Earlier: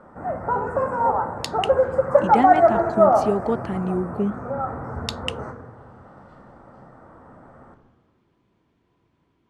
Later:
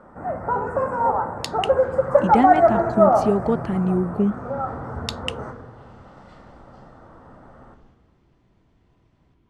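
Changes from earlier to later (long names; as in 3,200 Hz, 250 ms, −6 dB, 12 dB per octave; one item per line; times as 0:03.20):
speech: remove high-pass filter 250 Hz 6 dB per octave
second sound +10.5 dB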